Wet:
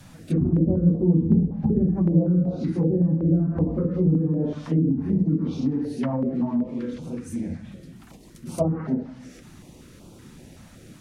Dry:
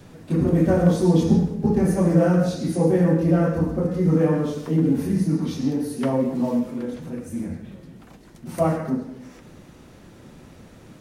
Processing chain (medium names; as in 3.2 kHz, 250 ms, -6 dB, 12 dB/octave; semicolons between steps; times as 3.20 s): low-pass that closes with the level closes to 330 Hz, closed at -15 dBFS; treble shelf 6.6 kHz +7.5 dB; step-sequenced notch 5.3 Hz 410–1800 Hz